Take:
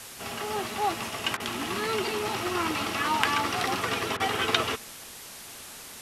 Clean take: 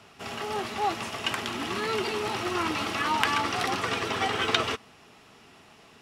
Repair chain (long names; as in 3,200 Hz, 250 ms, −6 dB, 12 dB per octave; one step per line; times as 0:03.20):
repair the gap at 0:01.37/0:04.17, 28 ms
noise reduction from a noise print 10 dB